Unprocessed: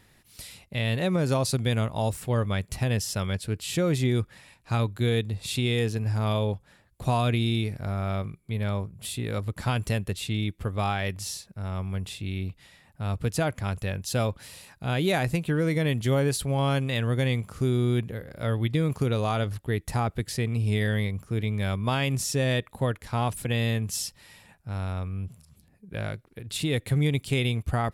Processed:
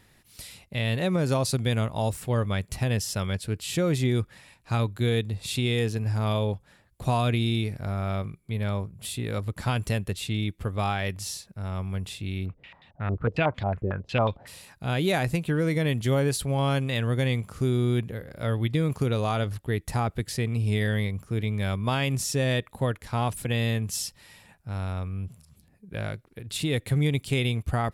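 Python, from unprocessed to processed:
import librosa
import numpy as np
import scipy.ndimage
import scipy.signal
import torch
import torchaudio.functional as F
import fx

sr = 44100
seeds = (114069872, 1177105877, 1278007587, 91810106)

y = fx.filter_held_lowpass(x, sr, hz=11.0, low_hz=370.0, high_hz=3600.0, at=(12.45, 14.46), fade=0.02)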